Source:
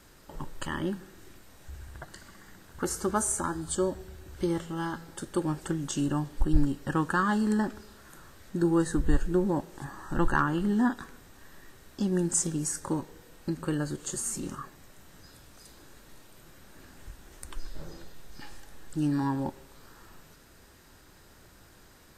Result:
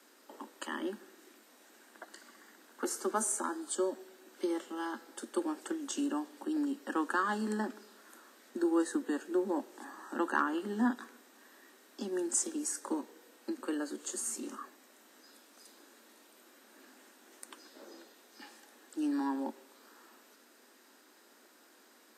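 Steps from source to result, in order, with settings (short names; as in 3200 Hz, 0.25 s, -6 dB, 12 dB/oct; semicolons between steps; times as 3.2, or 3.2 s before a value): steep high-pass 220 Hz 96 dB/oct; gain -4 dB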